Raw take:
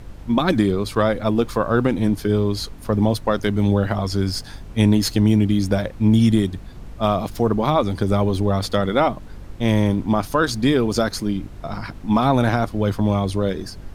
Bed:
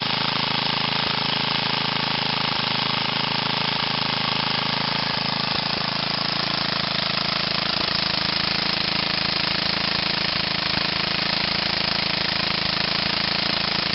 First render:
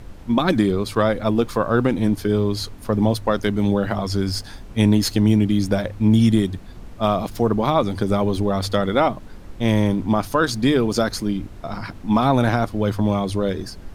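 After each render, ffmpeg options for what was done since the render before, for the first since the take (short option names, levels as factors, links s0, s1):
-af "bandreject=f=50:t=h:w=4,bandreject=f=100:t=h:w=4,bandreject=f=150:t=h:w=4"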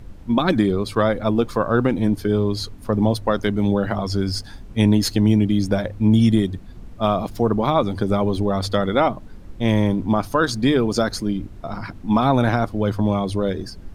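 -af "afftdn=nr=6:nf=-39"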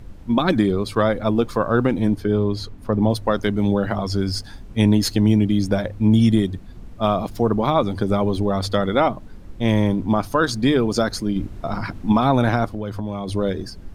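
-filter_complex "[0:a]asettb=1/sr,asplit=3[s0][s1][s2];[s0]atrim=end=2.144[s3];[s1]atrim=start=2.14:end=3.1,asetpts=PTS-STARTPTS,afade=t=in:d=0.004:c=qsin,afade=t=out:st=0.956:d=0.004:c=qsin,highshelf=f=4300:g=-9[s4];[s2]atrim=start=3.096[s5];[s3][s4]acrossfade=d=0.004:c1=hsin:c2=qsin[s6];[s6][s5]acrossfade=d=0.004:c1=qsin:c2=hsin,asettb=1/sr,asplit=3[s7][s8][s9];[s7]atrim=end=12.704[s10];[s8]atrim=start=12.7:end=13.28,asetpts=PTS-STARTPTS,afade=t=in:d=0.004:c=qsin,afade=t=out:st=0.576:d=0.004:c=qsin,acompressor=threshold=0.0631:ratio=4:attack=3.2:release=140:knee=1:detection=peak[s11];[s9]atrim=start=13.276[s12];[s10][s11]acrossfade=d=0.004:c1=hsin:c2=qsin[s13];[s13][s12]acrossfade=d=0.004:c1=qsin:c2=hsin,asplit=3[s14][s15][s16];[s14]atrim=end=11.362[s17];[s15]atrim=start=11.358:end=12.122,asetpts=PTS-STARTPTS,volume=1.58[s18];[s16]atrim=start=12.118[s19];[s17][s18]acrossfade=d=0.004:c1=hsin:c2=hsin[s20];[s20][s19]acrossfade=d=0.004:c1=hsin:c2=hsin"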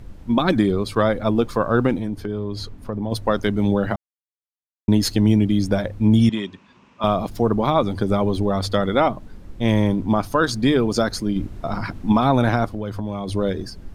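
-filter_complex "[0:a]asettb=1/sr,asplit=3[s0][s1][s2];[s0]atrim=end=1.964[s3];[s1]atrim=start=1.96:end=3.12,asetpts=PTS-STARTPTS,afade=t=in:d=0.004:c=qsin,afade=t=out:st=1.156:d=0.004:c=qsin,acompressor=threshold=0.0631:ratio=3:attack=3.2:release=140:knee=1:detection=peak[s4];[s2]atrim=start=3.116[s5];[s3][s4]acrossfade=d=0.004:c1=hsin:c2=qsin[s6];[s6][s5]acrossfade=d=0.004:c1=qsin:c2=hsin,asettb=1/sr,asplit=3[s7][s8][s9];[s7]atrim=end=6.294[s10];[s8]atrim=start=6.29:end=7.04,asetpts=PTS-STARTPTS,afade=t=in:d=0.004:c=qsin,afade=t=out:st=0.746:d=0.004:c=qsin,highpass=300,equalizer=f=320:t=q:w=4:g=-7,equalizer=f=460:t=q:w=4:g=-6,equalizer=f=710:t=q:w=4:g=-9,equalizer=f=1000:t=q:w=4:g=10,equalizer=f=2600:t=q:w=4:g=9,equalizer=f=4400:t=q:w=4:g=-5,lowpass=f=6400:w=0.5412,lowpass=f=6400:w=1.3066[s11];[s9]atrim=start=7.036[s12];[s10][s11]acrossfade=d=0.004:c1=hsin:c2=qsin[s13];[s13][s12]acrossfade=d=0.004:c1=qsin:c2=hsin,asplit=3[s14][s15][s16];[s14]atrim=end=3.96,asetpts=PTS-STARTPTS,afade=t=out:st=3.956:d=0.004:c=hsin[s17];[s15]atrim=start=3.96:end=4.88,asetpts=PTS-STARTPTS,volume=0[s18];[s16]atrim=start=4.88,asetpts=PTS-STARTPTS,afade=t=in:d=0.004:c=hsin[s19];[s17][s18][s19]concat=n=3:v=0:a=1"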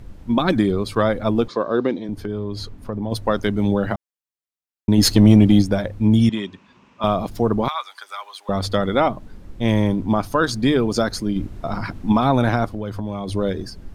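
-filter_complex "[0:a]asettb=1/sr,asplit=3[s0][s1][s2];[s0]atrim=end=1.484[s3];[s1]atrim=start=1.48:end=2.09,asetpts=PTS-STARTPTS,afade=t=in:d=0.004:c=qsin,afade=t=out:st=0.606:d=0.004:c=qsin,highpass=260,equalizer=f=380:t=q:w=4:g=3,equalizer=f=820:t=q:w=4:g=-6,equalizer=f=1400:t=q:w=4:g=-8,equalizer=f=2600:t=q:w=4:g=-6,equalizer=f=3900:t=q:w=4:g=6,lowpass=f=6000:w=0.5412,lowpass=f=6000:w=1.3066[s4];[s2]atrim=start=2.086[s5];[s3][s4]acrossfade=d=0.004:c1=hsin:c2=qsin[s6];[s6][s5]acrossfade=d=0.004:c1=qsin:c2=hsin,asplit=3[s7][s8][s9];[s7]afade=t=out:st=4.97:d=0.02[s10];[s8]acontrast=73,afade=t=in:st=4.97:d=0.02,afade=t=out:st=5.61:d=0.02[s11];[s9]afade=t=in:st=5.61:d=0.02[s12];[s10][s11][s12]amix=inputs=3:normalize=0,asettb=1/sr,asplit=3[s13][s14][s15];[s13]atrim=end=7.684[s16];[s14]atrim=start=7.68:end=8.49,asetpts=PTS-STARTPTS,afade=t=in:d=0.004:c=qsin,afade=t=out:st=0.806:d=0.004:c=qsin,highpass=f=1100:w=0.5412,highpass=f=1100:w=1.3066[s17];[s15]atrim=start=8.486[s18];[s16][s17]acrossfade=d=0.004:c1=hsin:c2=qsin[s19];[s19][s18]acrossfade=d=0.004:c1=qsin:c2=hsin"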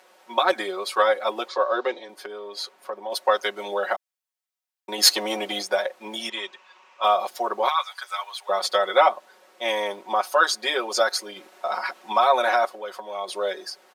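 -af "highpass=f=550:w=0.5412,highpass=f=550:w=1.3066,aecho=1:1:5.4:0.99"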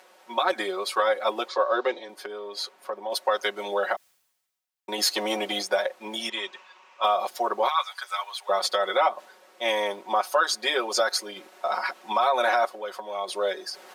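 -af "alimiter=limit=0.251:level=0:latency=1:release=121,areverse,acompressor=mode=upward:threshold=0.0112:ratio=2.5,areverse"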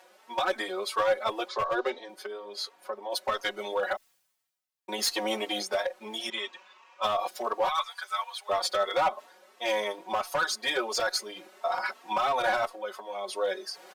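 -filter_complex "[0:a]asoftclip=type=hard:threshold=0.133,asplit=2[s0][s1];[s1]adelay=3.8,afreqshift=2.9[s2];[s0][s2]amix=inputs=2:normalize=1"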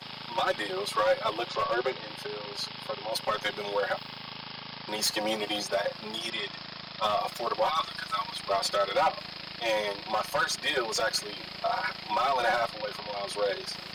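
-filter_complex "[1:a]volume=0.119[s0];[0:a][s0]amix=inputs=2:normalize=0"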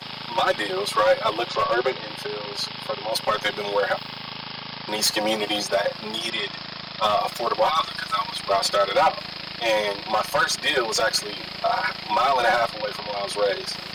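-af "volume=2.11"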